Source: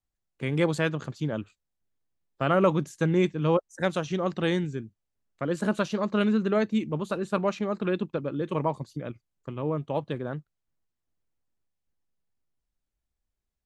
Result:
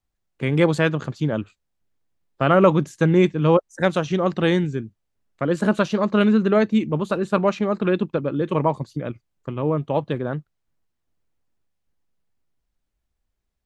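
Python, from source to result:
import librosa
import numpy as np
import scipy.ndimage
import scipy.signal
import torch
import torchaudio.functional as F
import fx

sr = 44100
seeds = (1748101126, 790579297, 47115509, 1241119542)

y = fx.high_shelf(x, sr, hz=5300.0, db=-6.5)
y = F.gain(torch.from_numpy(y), 7.0).numpy()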